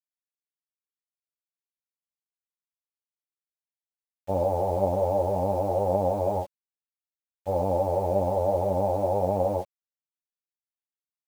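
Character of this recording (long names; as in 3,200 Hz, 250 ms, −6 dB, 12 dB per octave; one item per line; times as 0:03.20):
a quantiser's noise floor 8 bits, dither none
a shimmering, thickened sound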